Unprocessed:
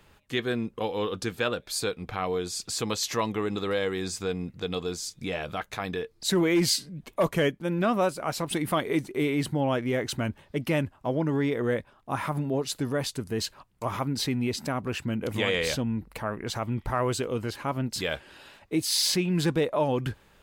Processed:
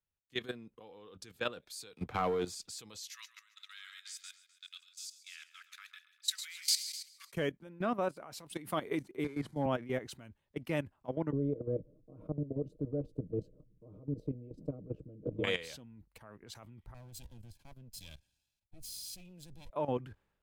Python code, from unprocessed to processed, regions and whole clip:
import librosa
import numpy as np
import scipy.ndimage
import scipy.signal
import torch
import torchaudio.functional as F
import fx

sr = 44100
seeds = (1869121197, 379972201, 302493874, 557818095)

y = fx.chain(x, sr, fx.highpass(hz=84.0, slope=12),
    fx.leveller(passes=2),
    fx.band_squash(depth_pct=40), at=(1.96, 2.55))
y = fx.chain(y, sr, fx.steep_highpass(hz=1300.0, slope=48),
    fx.echo_feedback(ms=133, feedback_pct=57, wet_db=-7.0), at=(3.09, 7.32))
y = fx.chain(y, sr, fx.delta_mod(bps=64000, step_db=-45.0),
    fx.notch(hz=2700.0, q=7.4),
    fx.band_widen(depth_pct=70), at=(9.24, 9.66))
y = fx.chain(y, sr, fx.ellip_lowpass(hz=520.0, order=4, stop_db=40),
    fx.comb(ms=6.5, depth=0.86),
    fx.spectral_comp(ratio=2.0), at=(11.32, 15.44))
y = fx.chain(y, sr, fx.lower_of_two(delay_ms=1.2),
    fx.peak_eq(hz=1200.0, db=-15.0, octaves=2.3),
    fx.notch(hz=1800.0, q=15.0), at=(16.94, 19.7))
y = fx.level_steps(y, sr, step_db=13)
y = fx.band_widen(y, sr, depth_pct=70)
y = F.gain(torch.from_numpy(y), -7.5).numpy()